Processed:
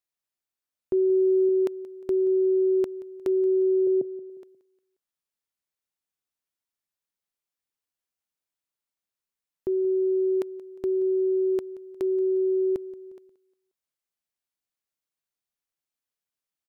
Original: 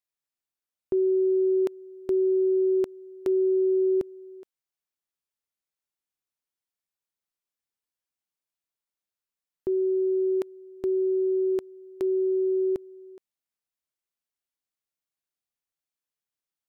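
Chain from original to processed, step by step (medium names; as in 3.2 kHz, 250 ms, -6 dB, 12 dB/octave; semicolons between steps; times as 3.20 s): 0.93–1.49 s: bass shelf 180 Hz +6 dB; 3.87–4.30 s: elliptic band-pass 130–680 Hz; feedback delay 178 ms, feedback 43%, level -19 dB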